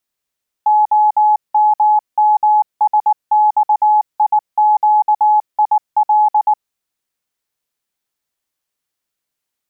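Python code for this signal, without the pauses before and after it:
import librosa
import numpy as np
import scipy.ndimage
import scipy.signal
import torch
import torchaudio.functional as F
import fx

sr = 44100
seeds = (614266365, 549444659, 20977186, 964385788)

y = fx.morse(sr, text='OMMSXIQIL', wpm=19, hz=848.0, level_db=-8.0)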